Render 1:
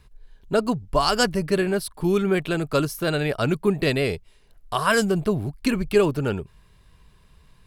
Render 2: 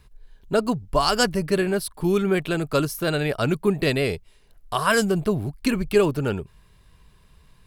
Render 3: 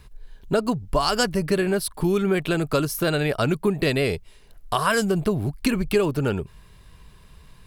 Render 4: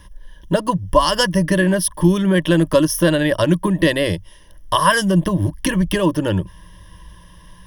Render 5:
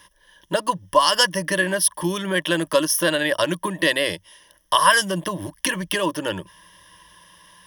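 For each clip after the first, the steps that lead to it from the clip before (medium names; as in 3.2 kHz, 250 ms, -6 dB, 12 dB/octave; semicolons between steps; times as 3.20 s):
treble shelf 11 kHz +4 dB
compression 2.5:1, threshold -26 dBFS, peak gain reduction 9 dB; trim +5.5 dB
rippled EQ curve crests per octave 1.2, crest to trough 16 dB; trim +3.5 dB
high-pass 980 Hz 6 dB/octave; trim +2 dB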